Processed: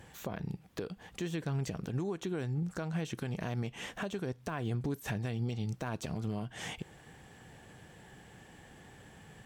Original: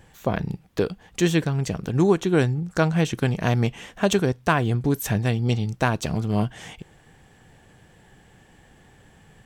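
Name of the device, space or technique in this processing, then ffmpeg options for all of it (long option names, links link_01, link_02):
podcast mastering chain: -af "highpass=frequency=73:poles=1,deesser=0.7,acompressor=threshold=-27dB:ratio=4,alimiter=level_in=2dB:limit=-24dB:level=0:latency=1:release=209,volume=-2dB" -ar 48000 -c:a libmp3lame -b:a 112k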